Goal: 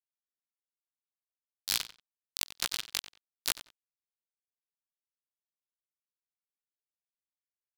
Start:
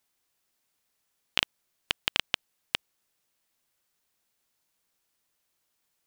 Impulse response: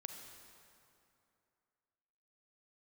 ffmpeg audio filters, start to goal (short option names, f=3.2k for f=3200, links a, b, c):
-filter_complex "[0:a]equalizer=f=560:t=o:w=0.34:g=-12.5,bandreject=f=50:t=h:w=6,bandreject=f=100:t=h:w=6,bandreject=f=150:t=h:w=6,bandreject=f=200:t=h:w=6,bandreject=f=250:t=h:w=6,bandreject=f=300:t=h:w=6,bandreject=f=350:t=h:w=6,bandreject=f=400:t=h:w=6,acompressor=threshold=-37dB:ratio=8,aeval=exprs='val(0)+0.000794*sin(2*PI*2800*n/s)':c=same,aeval=exprs='sgn(val(0))*max(abs(val(0))-0.00531,0)':c=same,asplit=4[a][b][c][d];[b]asetrate=22050,aresample=44100,atempo=2,volume=-7dB[e];[c]asetrate=37084,aresample=44100,atempo=1.18921,volume=-1dB[f];[d]asetrate=66075,aresample=44100,atempo=0.66742,volume=-3dB[g];[a][e][f][g]amix=inputs=4:normalize=0,aexciter=amount=3.9:drive=4.8:freq=3.5k,atempo=0.78,asplit=2[h][i];[i]adelay=92,lowpass=f=4.7k:p=1,volume=-14dB,asplit=2[j][k];[k]adelay=92,lowpass=f=4.7k:p=1,volume=0.2[l];[j][l]amix=inputs=2:normalize=0[m];[h][m]amix=inputs=2:normalize=0"